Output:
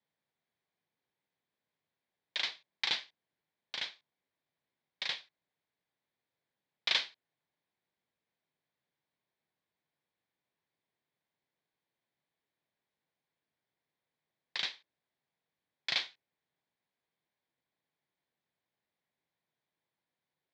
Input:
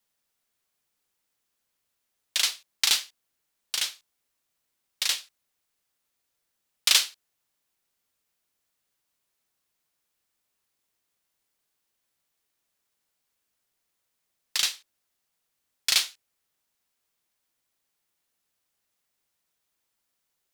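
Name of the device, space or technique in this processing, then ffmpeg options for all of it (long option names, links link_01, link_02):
guitar cabinet: -af "highpass=97,equalizer=frequency=150:width_type=q:width=4:gain=6,equalizer=frequency=1300:width_type=q:width=4:gain=-9,equalizer=frequency=2800:width_type=q:width=4:gain=-9,lowpass=frequency=3500:width=0.5412,lowpass=frequency=3500:width=1.3066,volume=-2dB"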